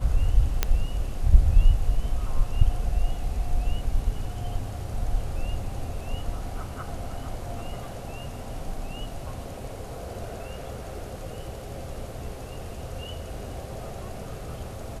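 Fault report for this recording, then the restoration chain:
0:00.63: click −7 dBFS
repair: click removal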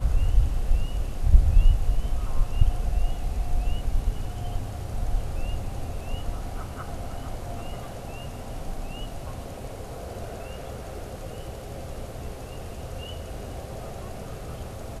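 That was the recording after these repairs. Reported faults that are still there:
none of them is left

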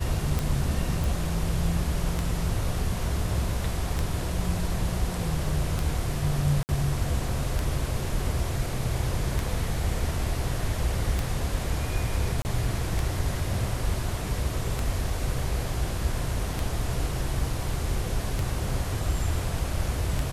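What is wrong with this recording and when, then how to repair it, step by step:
scratch tick 33 1/3 rpm
0:01.04: click
0:06.63–0:06.69: drop-out 59 ms
0:12.42–0:12.45: drop-out 29 ms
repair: click removal
repair the gap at 0:06.63, 59 ms
repair the gap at 0:12.42, 29 ms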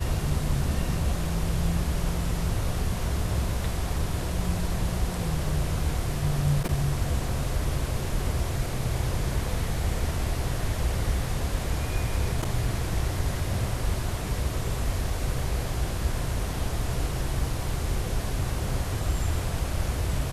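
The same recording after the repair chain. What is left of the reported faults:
none of them is left

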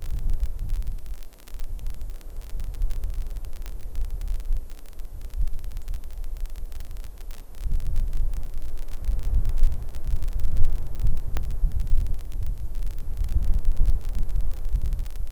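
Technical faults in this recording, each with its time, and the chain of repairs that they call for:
surface crackle 33 per second −27 dBFS
0:03.66: click −19 dBFS
0:11.37: click −12 dBFS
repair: click removal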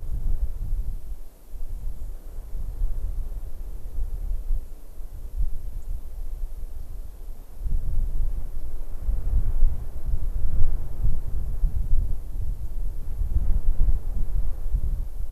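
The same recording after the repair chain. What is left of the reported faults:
none of them is left

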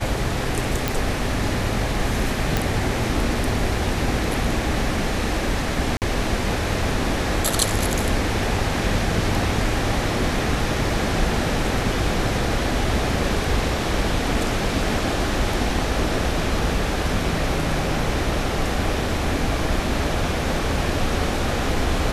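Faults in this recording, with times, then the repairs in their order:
0:00.88: click
0:02.57: click
0:05.97–0:06.02: drop-out 48 ms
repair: click removal
repair the gap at 0:05.97, 48 ms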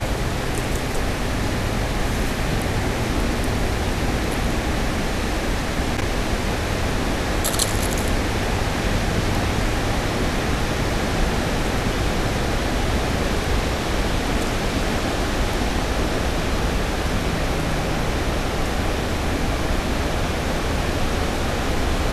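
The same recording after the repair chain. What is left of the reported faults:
none of them is left

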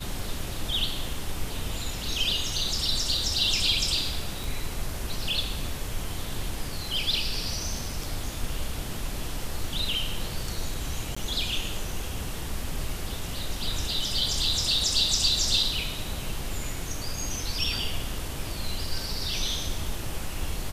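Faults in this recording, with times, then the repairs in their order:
0:04.44: click
0:11.15–0:11.16: drop-out 15 ms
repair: click removal
repair the gap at 0:11.15, 15 ms

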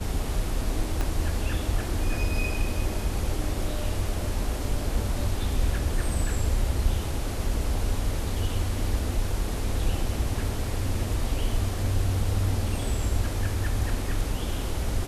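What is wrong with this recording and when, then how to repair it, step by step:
0:01.01: click −15 dBFS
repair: click removal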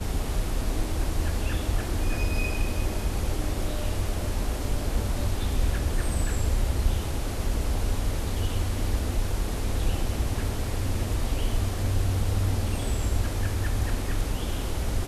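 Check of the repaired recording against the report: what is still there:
0:01.01: click

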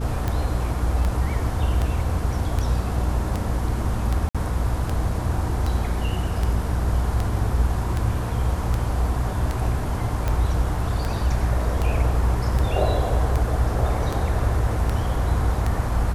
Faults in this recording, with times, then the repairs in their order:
mains hum 60 Hz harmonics 5 −26 dBFS
scratch tick 78 rpm −12 dBFS
0:04.29–0:04.35: drop-out 56 ms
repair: click removal
hum removal 60 Hz, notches 5
repair the gap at 0:04.29, 56 ms

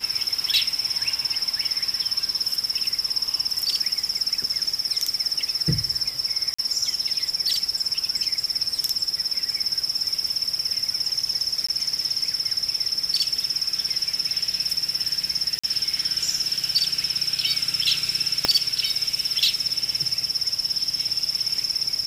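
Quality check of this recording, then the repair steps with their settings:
0:06.54–0:06.58: drop-out 45 ms
0:11.67–0:11.69: drop-out 15 ms
0:15.59–0:15.63: drop-out 45 ms
0:18.45: click −3 dBFS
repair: click removal
repair the gap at 0:06.54, 45 ms
repair the gap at 0:11.67, 15 ms
repair the gap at 0:15.59, 45 ms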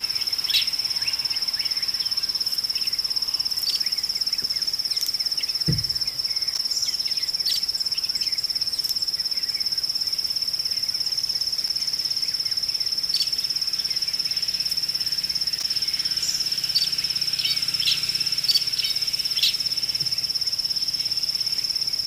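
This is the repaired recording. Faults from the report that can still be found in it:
0:18.45: click

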